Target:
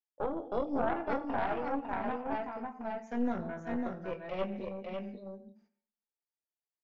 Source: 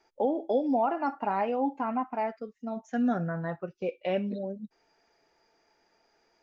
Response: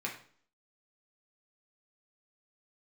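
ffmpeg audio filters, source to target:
-filter_complex "[0:a]asplit=2[link_01][link_02];[link_02]adelay=21,volume=-6.5dB[link_03];[link_01][link_03]amix=inputs=2:normalize=0,agate=range=-34dB:threshold=-60dB:ratio=16:detection=peak,asplit=2[link_04][link_05];[1:a]atrim=start_sample=2205,adelay=84[link_06];[link_05][link_06]afir=irnorm=-1:irlink=0,volume=-15.5dB[link_07];[link_04][link_07]amix=inputs=2:normalize=0,atempo=0.94,aecho=1:1:223|551:0.15|0.668,aeval=exprs='0.299*(cos(1*acos(clip(val(0)/0.299,-1,1)))-cos(1*PI/2))+0.075*(cos(4*acos(clip(val(0)/0.299,-1,1)))-cos(4*PI/2))':channel_layout=same,volume=-8.5dB"

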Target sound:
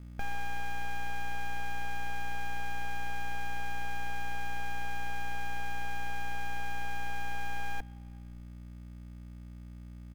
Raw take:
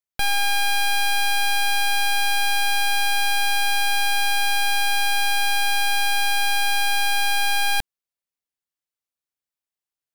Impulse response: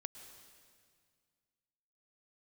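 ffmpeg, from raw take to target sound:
-filter_complex "[0:a]lowpass=frequency=3100:width=0.5412,lowpass=frequency=3100:width=1.3066,aecho=1:1:4.2:0.31,alimiter=level_in=2dB:limit=-24dB:level=0:latency=1,volume=-2dB,aeval=exprs='val(0)+0.00562*(sin(2*PI*60*n/s)+sin(2*PI*2*60*n/s)/2+sin(2*PI*3*60*n/s)/3+sin(2*PI*4*60*n/s)/4+sin(2*PI*5*60*n/s)/5)':channel_layout=same,asoftclip=type=hard:threshold=-26dB,adynamicsmooth=sensitivity=2.5:basefreq=560,acrusher=bits=5:mode=log:mix=0:aa=0.000001,asplit=2[link_01][link_02];[1:a]atrim=start_sample=2205,lowpass=2900[link_03];[link_02][link_03]afir=irnorm=-1:irlink=0,volume=-8dB[link_04];[link_01][link_04]amix=inputs=2:normalize=0,volume=-1dB"

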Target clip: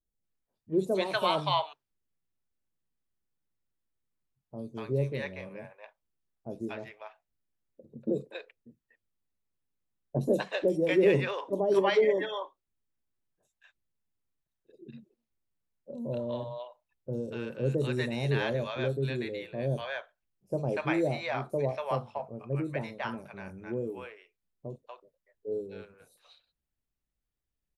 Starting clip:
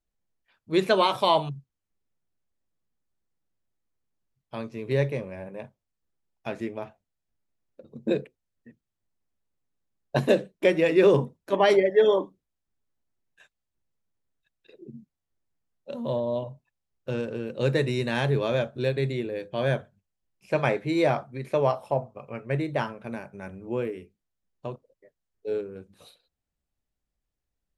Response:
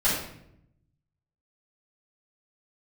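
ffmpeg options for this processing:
-filter_complex "[0:a]acrossover=split=670|5900[link_01][link_02][link_03];[link_03]adelay=50[link_04];[link_02]adelay=240[link_05];[link_01][link_05][link_04]amix=inputs=3:normalize=0,volume=-3.5dB"

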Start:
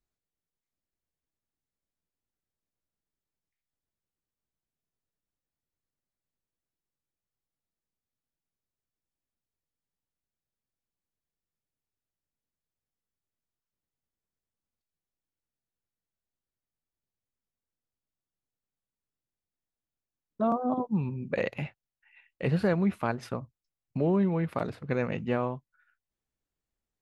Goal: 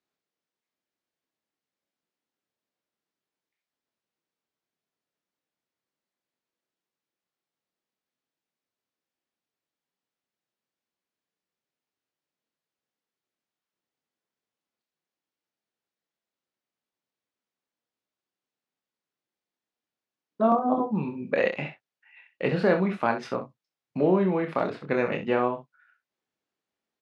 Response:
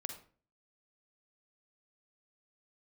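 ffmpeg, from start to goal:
-af "highpass=240,lowpass=4900,aecho=1:1:27|65:0.501|0.299,volume=5dB"

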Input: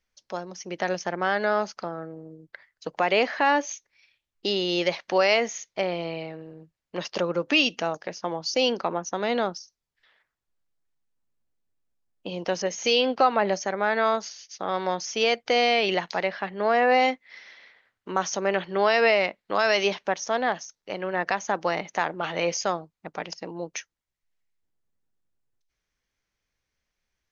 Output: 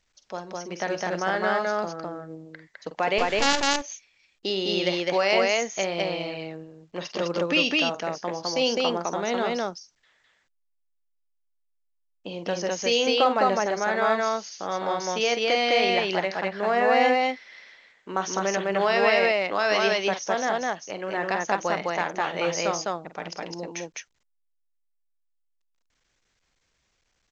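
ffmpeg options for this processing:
ffmpeg -i in.wav -filter_complex "[0:a]asettb=1/sr,asplit=3[link_01][link_02][link_03];[link_01]atrim=end=3.184[link_04];[link_02]atrim=start=3.18:end=3.61,asetpts=PTS-STARTPTS,afade=type=in:duration=0.004:curve=qsin,afade=type=out:start_time=0.426:duration=0.004:curve=qsin,acrusher=bits=3:dc=4:mix=0:aa=0.000001[link_05];[link_03]atrim=start=3.606[link_06];[link_04][link_05]acrossfade=duration=0.004:curve1=hsin:curve2=qsin[link_07];[link_07][link_06]acrossfade=duration=0.004:curve1=qsin:curve2=hsin,asettb=1/sr,asplit=3[link_08][link_09][link_10];[link_08]atrim=end=5.584[link_11];[link_09]atrim=start=5.58:end=6.34,asetpts=PTS-STARTPTS,afade=type=in:duration=0.004:curve=qsin,afade=type=out:start_time=0.756:duration=0.004:curve=qsin,highshelf=frequency=2400:gain=7.5[link_12];[link_10]atrim=start=6.336[link_13];[link_11][link_12]acrossfade=duration=0.004:curve1=hsin:curve2=qsin[link_14];[link_14][link_13]acrossfade=duration=0.004:curve1=qsin:curve2=hsin,aecho=1:1:46.65|207:0.282|0.891,volume=-2dB" -ar 16000 -c:a pcm_alaw out.wav

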